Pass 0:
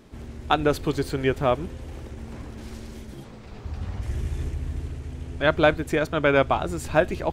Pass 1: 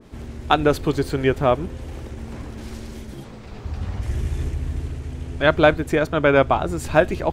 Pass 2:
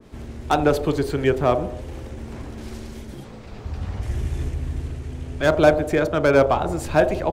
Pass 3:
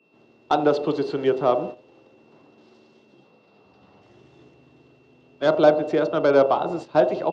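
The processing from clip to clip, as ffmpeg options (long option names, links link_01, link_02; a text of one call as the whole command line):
ffmpeg -i in.wav -af "adynamicequalizer=threshold=0.0141:dfrequency=1800:dqfactor=0.7:tfrequency=1800:tqfactor=0.7:attack=5:release=100:ratio=0.375:range=2:mode=cutabove:tftype=highshelf,volume=4dB" out.wav
ffmpeg -i in.wav -filter_complex "[0:a]acrossover=split=310|880[link_01][link_02][link_03];[link_02]aecho=1:1:40|86|138.9|199.7|269.7:0.631|0.398|0.251|0.158|0.1[link_04];[link_03]asoftclip=type=hard:threshold=-19.5dB[link_05];[link_01][link_04][link_05]amix=inputs=3:normalize=0,volume=-1dB" out.wav
ffmpeg -i in.wav -af "highpass=frequency=180:width=0.5412,highpass=frequency=180:width=1.3066,equalizer=frequency=230:width_type=q:width=4:gain=-8,equalizer=frequency=1700:width_type=q:width=4:gain=-9,equalizer=frequency=2400:width_type=q:width=4:gain=-10,lowpass=frequency=4800:width=0.5412,lowpass=frequency=4800:width=1.3066,aeval=exprs='val(0)+0.00282*sin(2*PI*2700*n/s)':channel_layout=same,agate=range=-13dB:threshold=-31dB:ratio=16:detection=peak" out.wav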